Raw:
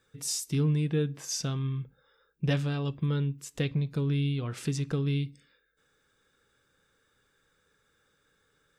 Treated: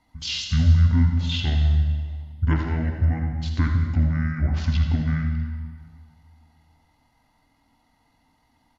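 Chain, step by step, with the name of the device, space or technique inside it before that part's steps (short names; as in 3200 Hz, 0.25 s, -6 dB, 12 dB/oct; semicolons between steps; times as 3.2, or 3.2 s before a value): monster voice (pitch shift -10 st; low shelf 180 Hz +5 dB; echo 81 ms -9.5 dB; reverb RT60 1.8 s, pre-delay 45 ms, DRR 5 dB); gain +4 dB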